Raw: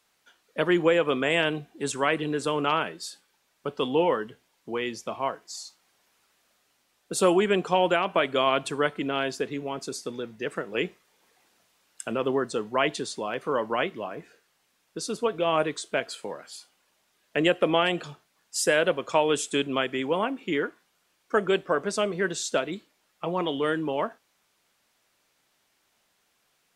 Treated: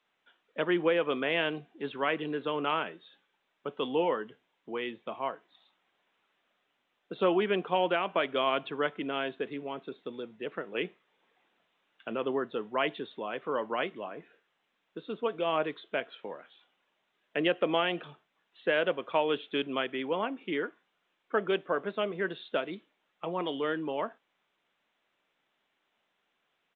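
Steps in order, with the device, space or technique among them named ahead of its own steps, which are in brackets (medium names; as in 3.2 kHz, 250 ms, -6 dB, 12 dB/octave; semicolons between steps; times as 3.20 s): 9.91–10.52 s: dynamic bell 1.7 kHz, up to -7 dB, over -52 dBFS, Q 2.3; Bluetooth headset (high-pass 170 Hz 12 dB/octave; resampled via 8 kHz; trim -5 dB; SBC 64 kbps 16 kHz)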